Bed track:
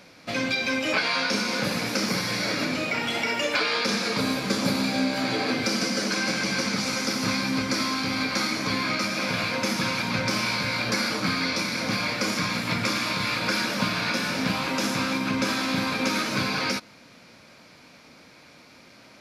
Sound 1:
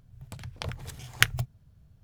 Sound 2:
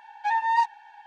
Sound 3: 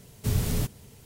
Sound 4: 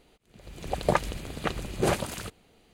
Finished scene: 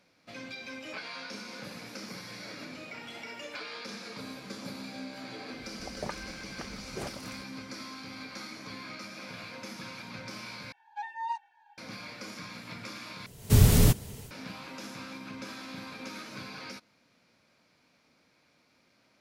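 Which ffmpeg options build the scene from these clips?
-filter_complex "[0:a]volume=-16.5dB[a];[2:a]asplit=2[b][c];[c]adelay=2.2,afreqshift=-2.8[d];[b][d]amix=inputs=2:normalize=1[e];[3:a]dynaudnorm=f=110:g=3:m=7.5dB[f];[a]asplit=3[g][h][i];[g]atrim=end=10.724[j];[e]atrim=end=1.06,asetpts=PTS-STARTPTS,volume=-10.5dB[k];[h]atrim=start=11.776:end=13.264[l];[f]atrim=end=1.05,asetpts=PTS-STARTPTS,volume=-0.5dB[m];[i]atrim=start=14.306[n];[4:a]atrim=end=2.73,asetpts=PTS-STARTPTS,volume=-14dB,afade=t=in:d=0.004:c=hsin,afade=t=out:st=2.726:d=0.004:c=hsin,adelay=5140[o];[j][k]acrossfade=d=0.004:c1=hsin:c2=hsin[p];[p][l]acrossfade=d=0.004:c1=hsin:c2=hsin[q];[q][m]acrossfade=d=0.004:c1=hsin:c2=hsin[r];[r][n]acrossfade=d=0.004:c1=hsin:c2=hsin[s];[s][o]amix=inputs=2:normalize=0"

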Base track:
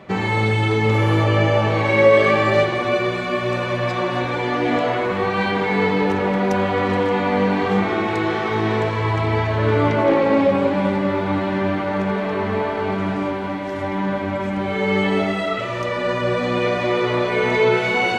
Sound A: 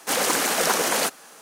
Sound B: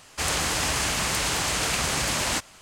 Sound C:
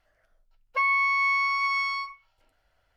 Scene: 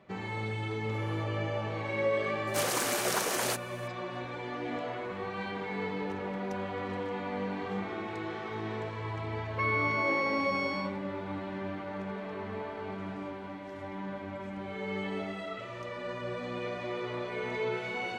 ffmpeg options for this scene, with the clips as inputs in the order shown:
-filter_complex "[0:a]volume=-16.5dB[a];[1:a]atrim=end=1.41,asetpts=PTS-STARTPTS,volume=-9dB,afade=t=in:d=0.004:c=hsin,afade=t=out:st=1.406:d=0.004:c=hsin,adelay=2470[b];[3:a]atrim=end=2.96,asetpts=PTS-STARTPTS,volume=-7.5dB,afade=t=in:d=0.004:c=hsin,afade=t=out:st=2.956:d=0.004:c=hsin,adelay=388962S[c];[a][b][c]amix=inputs=3:normalize=0"

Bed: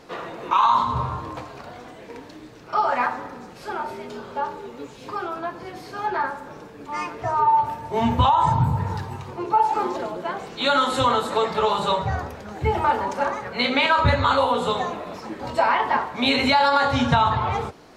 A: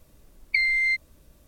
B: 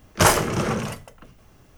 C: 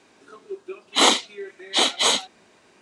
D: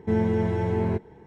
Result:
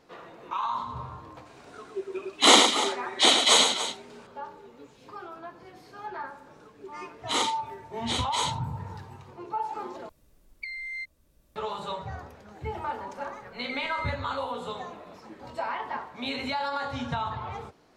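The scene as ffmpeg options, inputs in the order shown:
-filter_complex "[3:a]asplit=2[a][b];[1:a]asplit=2[c][d];[0:a]volume=-12.5dB[e];[a]aecho=1:1:107.9|288.6:0.501|0.251[f];[b]asuperstop=centerf=670:order=4:qfactor=6.3[g];[c]acompressor=threshold=-27dB:ratio=2:attack=0.21:release=924:knee=1:detection=rms[h];[e]asplit=2[i][j];[i]atrim=end=10.094[k];[h]atrim=end=1.47,asetpts=PTS-STARTPTS,volume=-7dB[l];[j]atrim=start=11.556[m];[f]atrim=end=2.81,asetpts=PTS-STARTPTS,afade=t=in:d=0.004:c=hsin,afade=t=out:st=2.806:d=0.004:c=hsin,adelay=1460[n];[g]atrim=end=2.81,asetpts=PTS-STARTPTS,volume=-11dB,afade=t=in:d=0.004:c=hsin,afade=t=out:st=2.806:d=0.004:c=hsin,adelay=6330[o];[d]atrim=end=1.47,asetpts=PTS-STARTPTS,volume=-16dB,afade=t=in:d=0.004:c=hsin,afade=t=out:st=1.466:d=0.004:c=hsin,adelay=13150[p];[k][l]acrossfade=d=0.004:c1=hsin:c2=hsin[q];[q][m]acrossfade=d=0.004:c1=hsin:c2=hsin[r];[r][n][o][p]amix=inputs=4:normalize=0"

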